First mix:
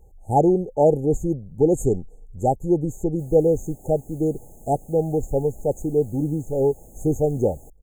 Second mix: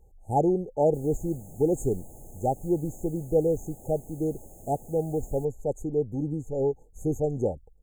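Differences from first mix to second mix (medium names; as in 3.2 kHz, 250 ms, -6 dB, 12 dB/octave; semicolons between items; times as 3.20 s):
speech -6.0 dB; background: entry -2.25 s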